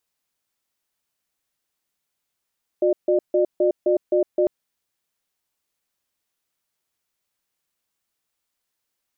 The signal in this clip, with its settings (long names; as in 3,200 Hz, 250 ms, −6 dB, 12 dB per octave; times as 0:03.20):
tone pair in a cadence 361 Hz, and 602 Hz, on 0.11 s, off 0.15 s, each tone −18 dBFS 1.65 s